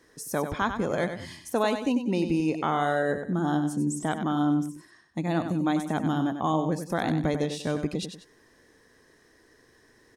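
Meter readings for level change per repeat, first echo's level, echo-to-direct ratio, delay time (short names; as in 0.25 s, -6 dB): -9.0 dB, -8.5 dB, -8.0 dB, 95 ms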